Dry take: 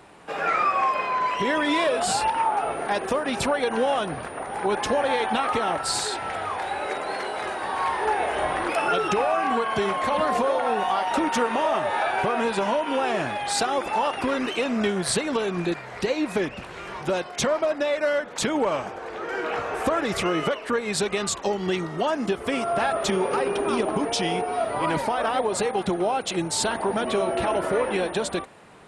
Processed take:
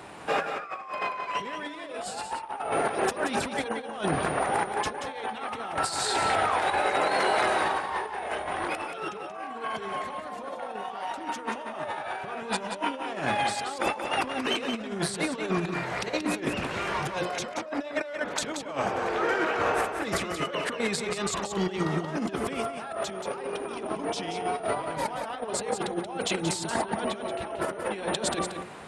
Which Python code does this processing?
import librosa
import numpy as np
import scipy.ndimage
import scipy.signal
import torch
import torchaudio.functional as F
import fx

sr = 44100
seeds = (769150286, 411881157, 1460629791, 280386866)

p1 = scipy.signal.sosfilt(scipy.signal.butter(2, 46.0, 'highpass', fs=sr, output='sos'), x)
p2 = fx.hum_notches(p1, sr, base_hz=60, count=9)
p3 = fx.over_compress(p2, sr, threshold_db=-30.0, ratio=-0.5)
y = p3 + fx.echo_single(p3, sr, ms=180, db=-7.5, dry=0)